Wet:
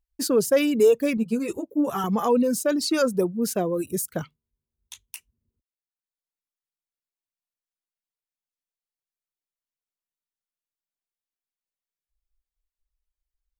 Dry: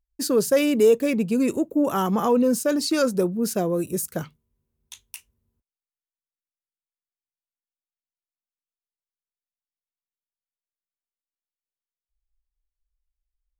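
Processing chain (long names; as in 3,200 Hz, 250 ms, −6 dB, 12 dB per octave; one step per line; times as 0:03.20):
reverb reduction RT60 0.98 s
0:01.17–0:02.04: string-ensemble chorus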